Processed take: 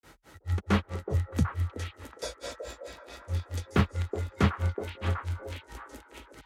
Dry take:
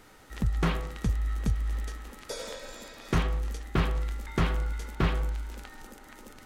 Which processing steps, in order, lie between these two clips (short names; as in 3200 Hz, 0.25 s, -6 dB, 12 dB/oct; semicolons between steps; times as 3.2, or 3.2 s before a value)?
grains 0.177 s, grains 4.6/s, pitch spread up and down by 0 st; delay with a stepping band-pass 0.372 s, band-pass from 440 Hz, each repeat 1.4 oct, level -2 dB; frequency shift +34 Hz; gain +3 dB